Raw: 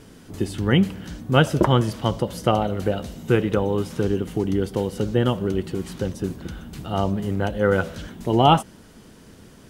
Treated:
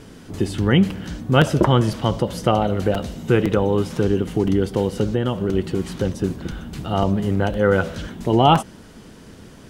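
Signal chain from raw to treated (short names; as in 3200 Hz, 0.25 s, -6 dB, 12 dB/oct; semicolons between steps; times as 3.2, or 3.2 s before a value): high shelf 11000 Hz -8.5 dB; in parallel at -1 dB: limiter -14.5 dBFS, peak gain reduction 11.5 dB; 5.05–5.53 on the sum: compressor 2.5:1, threshold -17 dBFS, peak gain reduction 4.5 dB; crackling interface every 0.51 s, samples 256, repeat, from 0.39; gain -1 dB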